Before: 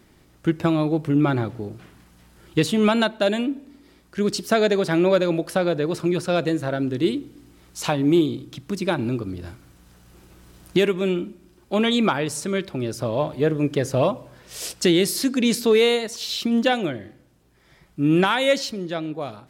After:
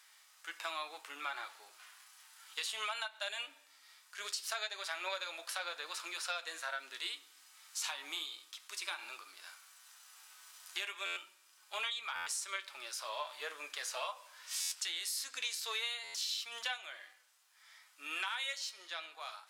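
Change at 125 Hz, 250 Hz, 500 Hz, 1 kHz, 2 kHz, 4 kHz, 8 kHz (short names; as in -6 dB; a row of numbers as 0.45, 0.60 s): under -40 dB, under -40 dB, -29.0 dB, -15.0 dB, -11.0 dB, -9.5 dB, -7.5 dB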